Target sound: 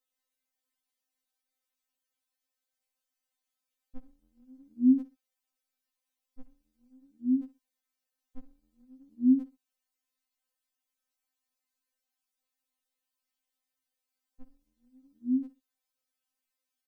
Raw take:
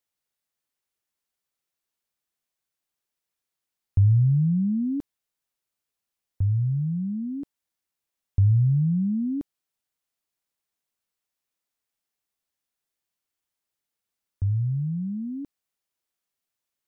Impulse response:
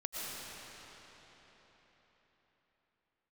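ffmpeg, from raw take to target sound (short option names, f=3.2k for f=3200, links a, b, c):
-af "aecho=1:1:63|126:0.15|0.0344,afftfilt=real='re*3.46*eq(mod(b,12),0)':imag='im*3.46*eq(mod(b,12),0)':win_size=2048:overlap=0.75"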